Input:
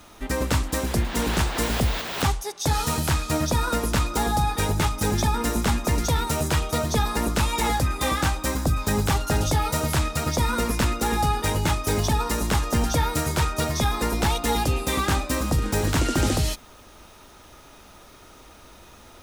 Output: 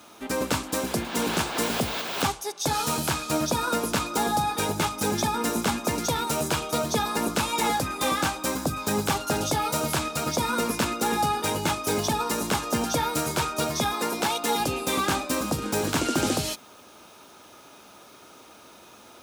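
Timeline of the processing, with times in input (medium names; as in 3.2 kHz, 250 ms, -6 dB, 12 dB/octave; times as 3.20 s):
13.93–14.60 s: high-pass 250 Hz 6 dB/octave
whole clip: high-pass 180 Hz 12 dB/octave; band-stop 1.9 kHz, Q 9.7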